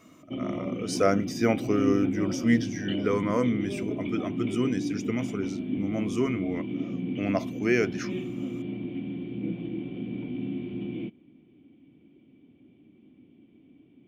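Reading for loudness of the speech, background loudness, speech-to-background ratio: -28.5 LUFS, -33.0 LUFS, 4.5 dB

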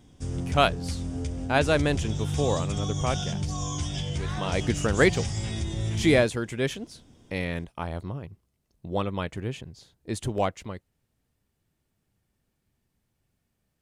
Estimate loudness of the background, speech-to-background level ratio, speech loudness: -31.5 LUFS, 4.0 dB, -27.5 LUFS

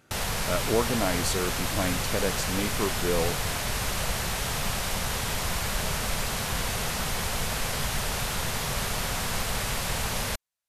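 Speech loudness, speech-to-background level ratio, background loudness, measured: -30.0 LUFS, -1.5 dB, -28.5 LUFS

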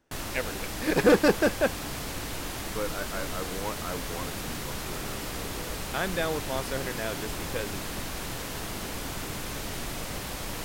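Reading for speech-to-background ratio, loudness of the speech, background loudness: 4.5 dB, -30.0 LUFS, -34.5 LUFS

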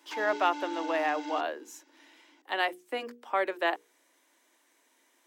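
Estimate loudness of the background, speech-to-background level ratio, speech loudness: -39.5 LUFS, 8.5 dB, -31.0 LUFS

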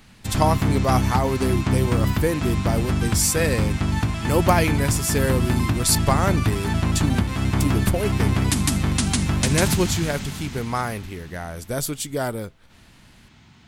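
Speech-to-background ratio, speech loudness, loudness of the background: -2.0 dB, -25.0 LUFS, -23.0 LUFS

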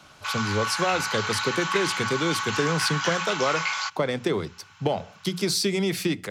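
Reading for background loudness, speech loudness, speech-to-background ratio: -27.5 LUFS, -27.0 LUFS, 0.5 dB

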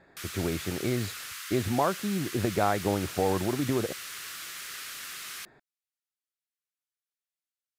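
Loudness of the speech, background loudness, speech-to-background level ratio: -30.0 LUFS, -38.0 LUFS, 8.0 dB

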